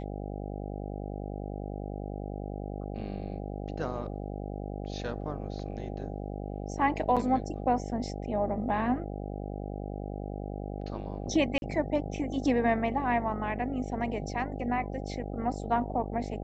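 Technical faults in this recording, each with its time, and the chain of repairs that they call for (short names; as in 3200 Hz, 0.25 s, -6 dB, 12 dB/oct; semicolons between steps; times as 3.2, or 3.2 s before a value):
buzz 50 Hz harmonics 16 -37 dBFS
7.16–7.17 gap 7 ms
11.58–11.62 gap 41 ms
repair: de-hum 50 Hz, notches 16; interpolate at 7.16, 7 ms; interpolate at 11.58, 41 ms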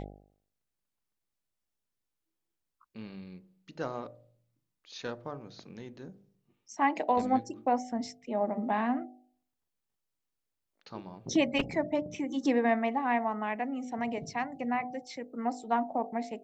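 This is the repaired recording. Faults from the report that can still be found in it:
none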